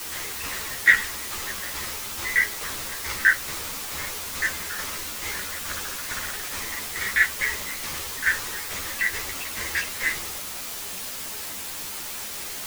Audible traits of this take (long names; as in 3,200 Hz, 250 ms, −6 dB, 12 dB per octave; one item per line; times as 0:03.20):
tremolo saw down 2.3 Hz, depth 75%
a quantiser's noise floor 6 bits, dither triangular
a shimmering, thickened sound